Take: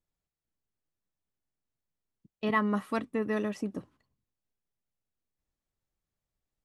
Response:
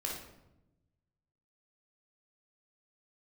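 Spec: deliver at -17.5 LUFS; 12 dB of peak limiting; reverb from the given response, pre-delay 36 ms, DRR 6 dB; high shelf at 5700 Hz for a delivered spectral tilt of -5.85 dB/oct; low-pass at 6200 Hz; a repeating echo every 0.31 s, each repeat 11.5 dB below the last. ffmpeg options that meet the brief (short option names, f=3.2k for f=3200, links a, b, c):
-filter_complex "[0:a]lowpass=6.2k,highshelf=f=5.7k:g=-5.5,alimiter=level_in=3.5dB:limit=-24dB:level=0:latency=1,volume=-3.5dB,aecho=1:1:310|620|930:0.266|0.0718|0.0194,asplit=2[a][b];[1:a]atrim=start_sample=2205,adelay=36[c];[b][c]afir=irnorm=-1:irlink=0,volume=-8dB[d];[a][d]amix=inputs=2:normalize=0,volume=19dB"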